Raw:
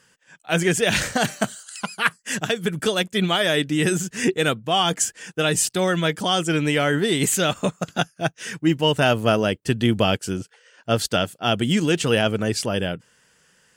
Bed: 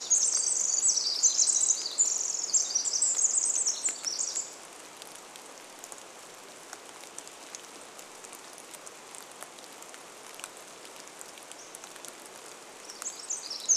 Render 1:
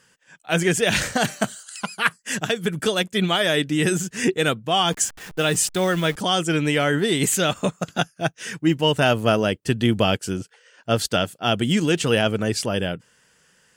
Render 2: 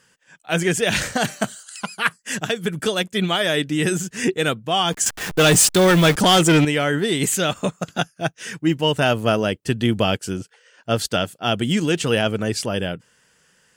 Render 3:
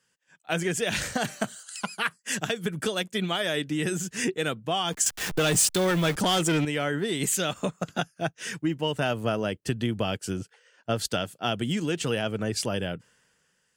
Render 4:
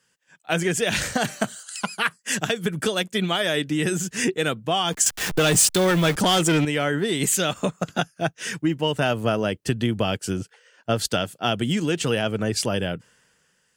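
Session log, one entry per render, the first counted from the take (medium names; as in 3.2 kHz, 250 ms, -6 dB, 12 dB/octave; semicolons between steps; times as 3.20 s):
4.92–6.16 s: send-on-delta sampling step -35 dBFS
5.06–6.65 s: waveshaping leveller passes 3
compression 4:1, threshold -25 dBFS, peak gain reduction 11 dB; three bands expanded up and down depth 40%
trim +4.5 dB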